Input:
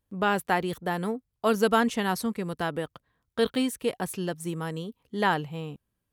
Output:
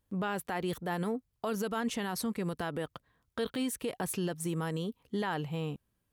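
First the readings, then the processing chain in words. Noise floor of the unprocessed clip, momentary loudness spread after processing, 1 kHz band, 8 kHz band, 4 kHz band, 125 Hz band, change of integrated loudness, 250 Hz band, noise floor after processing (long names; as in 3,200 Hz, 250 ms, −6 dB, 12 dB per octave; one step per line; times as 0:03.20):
−81 dBFS, 5 LU, −9.5 dB, −1.5 dB, −6.5 dB, −2.0 dB, −7.0 dB, −5.0 dB, −79 dBFS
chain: downward compressor 2.5 to 1, threshold −28 dBFS, peak gain reduction 7.5 dB
brickwall limiter −26 dBFS, peak gain reduction 9.5 dB
level +1.5 dB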